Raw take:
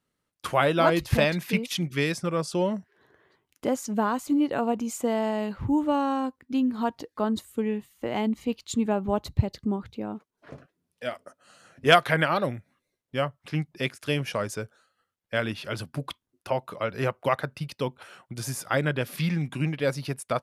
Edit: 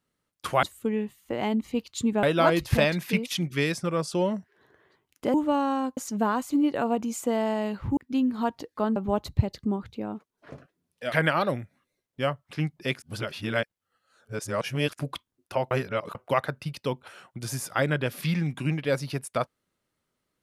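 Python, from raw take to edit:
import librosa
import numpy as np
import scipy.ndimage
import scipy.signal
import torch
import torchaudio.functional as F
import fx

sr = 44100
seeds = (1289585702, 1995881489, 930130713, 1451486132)

y = fx.edit(x, sr, fx.move(start_s=5.74, length_s=0.63, to_s=3.74),
    fx.move(start_s=7.36, length_s=1.6, to_s=0.63),
    fx.cut(start_s=11.12, length_s=0.95),
    fx.reverse_span(start_s=13.97, length_s=1.97),
    fx.reverse_span(start_s=16.66, length_s=0.44), tone=tone)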